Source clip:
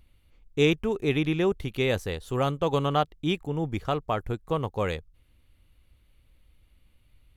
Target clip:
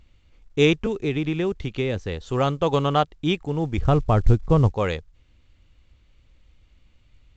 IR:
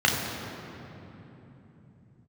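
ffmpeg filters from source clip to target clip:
-filter_complex "[0:a]asettb=1/sr,asplit=3[link_01][link_02][link_03];[link_01]atrim=end=0.864[link_04];[link_02]atrim=start=0.86:end=2.21,asetpts=PTS-STARTPTS,afade=type=in:duration=0.004:curve=qsin,afade=type=out:start_time=1.346:duration=0.004:curve=qsin,acrossover=split=450|1600|3800[link_05][link_06][link_07][link_08];[link_05]acompressor=threshold=-26dB:ratio=4[link_09];[link_06]acompressor=threshold=-40dB:ratio=4[link_10];[link_07]acompressor=threshold=-39dB:ratio=4[link_11];[link_08]acompressor=threshold=-54dB:ratio=4[link_12];[link_09][link_10][link_11][link_12]amix=inputs=4:normalize=0[link_13];[link_03]atrim=start=2.206[link_14];[link_04][link_13]acrossfade=duration=0.004:curve1=hsin:curve2=qsin[link_15];[link_15][link_14]acrossfade=duration=0.004:curve1=qsin:curve2=hsin,asettb=1/sr,asplit=3[link_16][link_17][link_18];[link_16]atrim=end=3.784[link_19];[link_17]atrim=start=3.78:end=4.73,asetpts=PTS-STARTPTS,afade=type=in:duration=0.004:curve=qsin,afade=type=out:start_time=0.946:duration=0.004:curve=qsin,aemphasis=mode=reproduction:type=riaa[link_20];[link_18]atrim=start=4.726[link_21];[link_19][link_20]acrossfade=duration=0.004:curve1=hsin:curve2=qsin[link_22];[link_22][link_21]acrossfade=duration=0.004:curve1=qsin:curve2=hsin,volume=4dB" -ar 16000 -c:a pcm_mulaw

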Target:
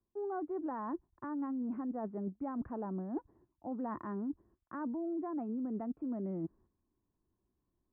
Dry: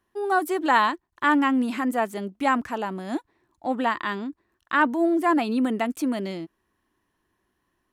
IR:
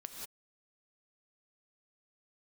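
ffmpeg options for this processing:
-filter_complex "[0:a]tiltshelf=frequency=870:gain=8.5,acrossover=split=140[link_01][link_02];[link_02]alimiter=limit=-15.5dB:level=0:latency=1:release=67[link_03];[link_01][link_03]amix=inputs=2:normalize=0,agate=range=-11dB:threshold=-55dB:ratio=16:detection=peak,lowshelf=frequency=140:gain=5.5,areverse,acompressor=threshold=-31dB:ratio=10,areverse,lowpass=frequency=1400:width=0.5412,lowpass=frequency=1400:width=1.3066,volume=-4.5dB"

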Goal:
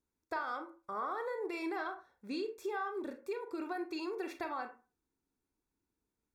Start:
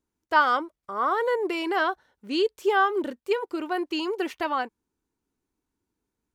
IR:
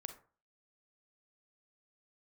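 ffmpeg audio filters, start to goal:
-filter_complex "[0:a]acompressor=threshold=-30dB:ratio=6,asuperstop=centerf=3000:order=20:qfactor=6.8[link_01];[1:a]atrim=start_sample=2205,asetrate=52920,aresample=44100[link_02];[link_01][link_02]afir=irnorm=-1:irlink=0"

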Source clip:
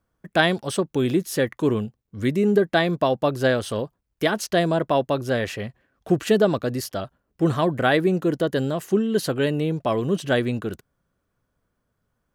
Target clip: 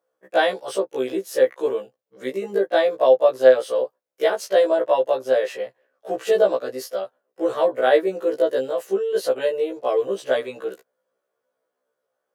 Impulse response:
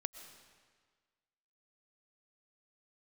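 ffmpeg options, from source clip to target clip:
-af "highpass=frequency=510:width_type=q:width=3.8,afftfilt=real='re*1.73*eq(mod(b,3),0)':imag='im*1.73*eq(mod(b,3),0)':win_size=2048:overlap=0.75,volume=-1.5dB"

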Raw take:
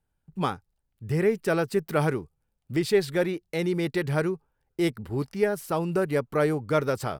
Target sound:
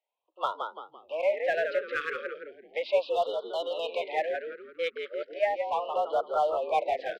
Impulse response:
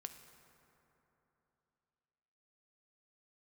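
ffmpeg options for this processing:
-filter_complex "[0:a]highpass=frequency=400:width_type=q:width=0.5412,highpass=frequency=400:width_type=q:width=1.307,lowpass=frequency=3500:width_type=q:width=0.5176,lowpass=frequency=3500:width_type=q:width=0.7071,lowpass=frequency=3500:width_type=q:width=1.932,afreqshift=160,asettb=1/sr,asplit=3[link_01][link_02][link_03];[link_01]atrim=end=3.104[link_04];[link_02]atrim=start=3.1:end=3.91,asetpts=PTS-STARTPTS,afade=type=in:duration=0.004:curve=qsin,afade=type=out:start_time=0.806:duration=0.004:curve=qsin,tiltshelf=frequency=730:gain=-4.5[link_05];[link_03]atrim=start=3.906[link_06];[link_04][link_05]acrossfade=duration=0.004:curve1=hsin:curve2=qsin[link_07];[link_07][link_06]acrossfade=duration=0.004:curve1=qsin:curve2=hsin,asplit=5[link_08][link_09][link_10][link_11][link_12];[link_09]adelay=169,afreqshift=-67,volume=-7dB[link_13];[link_10]adelay=338,afreqshift=-134,volume=-15.4dB[link_14];[link_11]adelay=507,afreqshift=-201,volume=-23.8dB[link_15];[link_12]adelay=676,afreqshift=-268,volume=-32.2dB[link_16];[link_08][link_13][link_14][link_15][link_16]amix=inputs=5:normalize=0,asplit=2[link_17][link_18];[link_18]asoftclip=type=hard:threshold=-28dB,volume=-8dB[link_19];[link_17][link_19]amix=inputs=2:normalize=0,asplit=3[link_20][link_21][link_22];[link_20]afade=type=out:start_time=5.33:duration=0.02[link_23];[link_21]afreqshift=37,afade=type=in:start_time=5.33:duration=0.02,afade=type=out:start_time=5.93:duration=0.02[link_24];[link_22]afade=type=in:start_time=5.93:duration=0.02[link_25];[link_23][link_24][link_25]amix=inputs=3:normalize=0,afftfilt=real='re*(1-between(b*sr/1024,780*pow(2100/780,0.5+0.5*sin(2*PI*0.36*pts/sr))/1.41,780*pow(2100/780,0.5+0.5*sin(2*PI*0.36*pts/sr))*1.41))':imag='im*(1-between(b*sr/1024,780*pow(2100/780,0.5+0.5*sin(2*PI*0.36*pts/sr))/1.41,780*pow(2100/780,0.5+0.5*sin(2*PI*0.36*pts/sr))*1.41))':win_size=1024:overlap=0.75,volume=-2dB"

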